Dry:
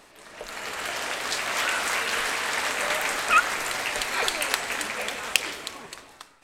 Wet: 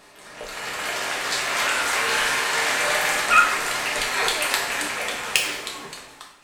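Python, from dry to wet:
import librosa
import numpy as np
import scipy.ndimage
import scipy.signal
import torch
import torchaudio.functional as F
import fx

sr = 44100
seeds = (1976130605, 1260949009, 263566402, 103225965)

y = fx.room_flutter(x, sr, wall_m=7.9, rt60_s=0.51, at=(1.98, 3.2))
y = fx.rev_double_slope(y, sr, seeds[0], early_s=0.52, late_s=2.8, knee_db=-27, drr_db=-1.0)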